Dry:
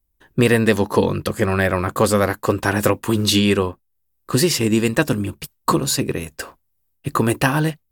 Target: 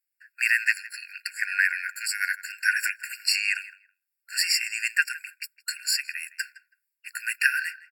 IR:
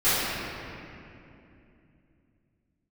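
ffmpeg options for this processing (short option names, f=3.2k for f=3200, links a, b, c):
-filter_complex "[0:a]highshelf=f=8.1k:g=-6.5,asplit=2[a][b];[b]adelay=162,lowpass=f=2k:p=1,volume=-16dB,asplit=2[c][d];[d]adelay=162,lowpass=f=2k:p=1,volume=0.2[e];[c][e]amix=inputs=2:normalize=0[f];[a][f]amix=inputs=2:normalize=0,afftfilt=real='re*eq(mod(floor(b*sr/1024/1400),2),1)':imag='im*eq(mod(floor(b*sr/1024/1400),2),1)':win_size=1024:overlap=0.75,volume=2dB"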